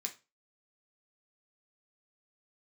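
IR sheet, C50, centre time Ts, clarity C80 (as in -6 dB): 14.0 dB, 9 ms, 21.5 dB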